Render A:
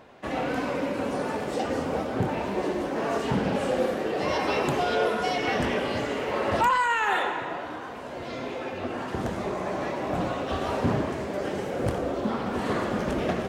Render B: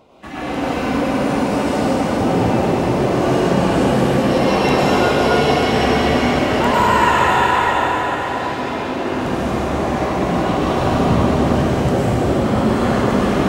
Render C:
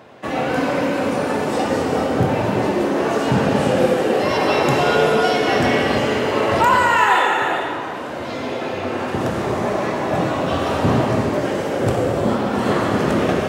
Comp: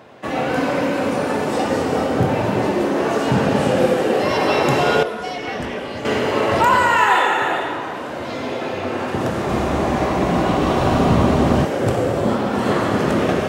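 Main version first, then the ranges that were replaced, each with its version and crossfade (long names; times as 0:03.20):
C
0:05.03–0:06.05: punch in from A
0:09.49–0:11.65: punch in from B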